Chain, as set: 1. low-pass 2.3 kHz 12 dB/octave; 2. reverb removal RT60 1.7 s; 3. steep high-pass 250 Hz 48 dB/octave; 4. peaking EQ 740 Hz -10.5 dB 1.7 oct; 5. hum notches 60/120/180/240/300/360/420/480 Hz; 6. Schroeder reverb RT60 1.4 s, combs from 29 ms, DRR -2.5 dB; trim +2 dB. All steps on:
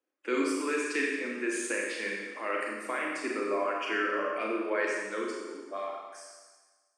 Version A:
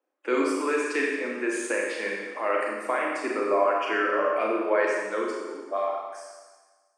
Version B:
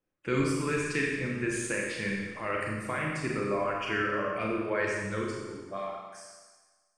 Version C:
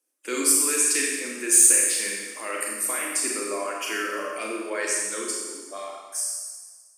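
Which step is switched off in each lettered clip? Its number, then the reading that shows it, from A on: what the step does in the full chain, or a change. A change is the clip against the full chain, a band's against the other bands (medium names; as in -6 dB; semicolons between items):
4, 1 kHz band +4.0 dB; 3, 250 Hz band +1.5 dB; 1, 8 kHz band +23.5 dB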